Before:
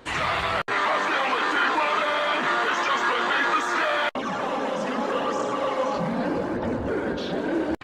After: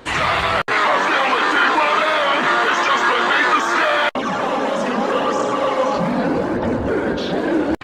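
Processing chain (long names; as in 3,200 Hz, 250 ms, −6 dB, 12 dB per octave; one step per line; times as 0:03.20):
wow of a warped record 45 rpm, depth 100 cents
level +7 dB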